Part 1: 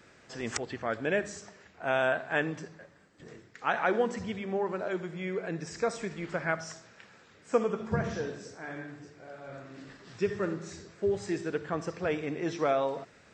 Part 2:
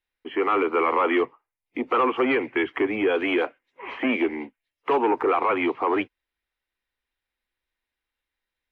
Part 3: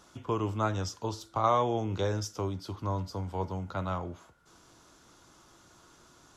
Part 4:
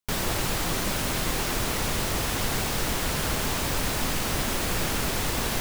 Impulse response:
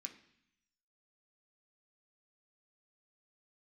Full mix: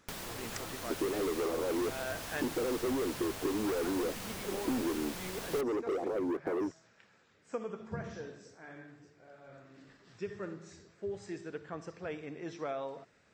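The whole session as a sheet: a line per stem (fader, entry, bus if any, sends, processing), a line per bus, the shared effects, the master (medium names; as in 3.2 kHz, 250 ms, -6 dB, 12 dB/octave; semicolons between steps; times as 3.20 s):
-9.5 dB, 0.00 s, bus B, no send, none
-5.0 dB, 0.65 s, bus B, no send, inverse Chebyshev low-pass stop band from 1.8 kHz, stop band 60 dB; waveshaping leveller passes 3
-11.5 dB, 0.00 s, bus A, no send, none
-5.5 dB, 0.00 s, bus A, no send, bass shelf 120 Hz -8.5 dB
bus A: 0.0 dB, compression 6:1, threshold -40 dBFS, peak gain reduction 11 dB
bus B: 0.0 dB, compression 12:1, threshold -31 dBFS, peak gain reduction 11 dB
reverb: none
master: none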